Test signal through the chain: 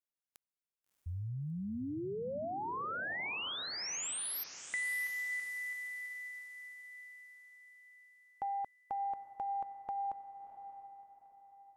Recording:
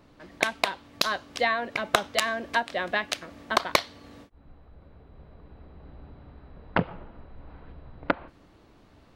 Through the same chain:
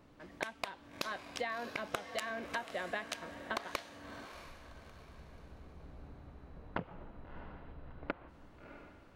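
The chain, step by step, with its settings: peaking EQ 4.2 kHz -3.5 dB 0.66 oct; compression, threshold -30 dBFS; on a send: echo that smears into a reverb 658 ms, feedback 41%, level -10.5 dB; on the sum: trim -5 dB

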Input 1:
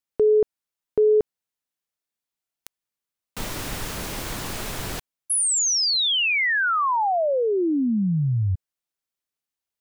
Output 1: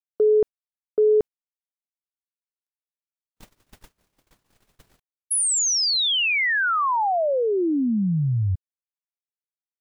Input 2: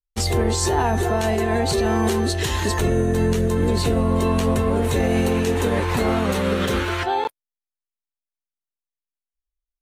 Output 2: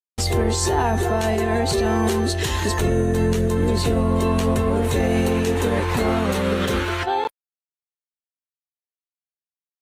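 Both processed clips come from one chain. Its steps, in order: gate -25 dBFS, range -58 dB

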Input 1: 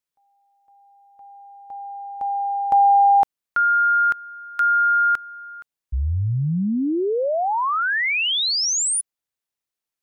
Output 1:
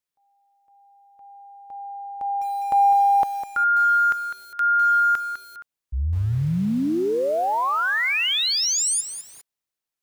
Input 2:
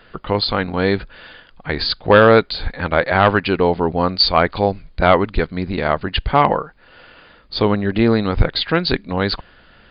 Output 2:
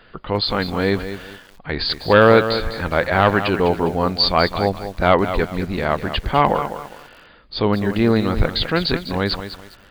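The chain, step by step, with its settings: transient shaper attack -3 dB, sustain +1 dB; bit-crushed delay 203 ms, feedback 35%, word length 6-bit, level -10 dB; trim -1 dB

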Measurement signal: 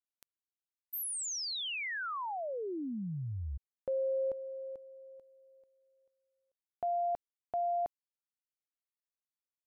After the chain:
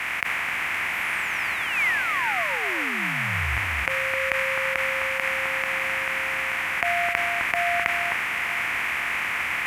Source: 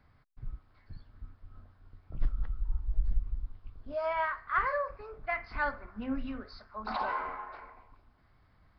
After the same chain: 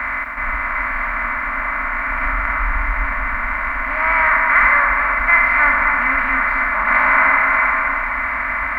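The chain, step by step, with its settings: spectral levelling over time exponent 0.2; high-pass 53 Hz 6 dB/octave; resonant high shelf 3.1 kHz -9.5 dB, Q 3; harmonic-percussive split percussive -9 dB; graphic EQ 125/250/500/1000/2000/4000 Hz -5/-3/-8/+4/+9/+4 dB; echo whose repeats swap between lows and highs 259 ms, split 1.8 kHz, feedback 53%, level -5 dB; in parallel at -2.5 dB: peak limiter -15.5 dBFS; on the sum: word length cut 10-bit, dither triangular; three bands expanded up and down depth 70%

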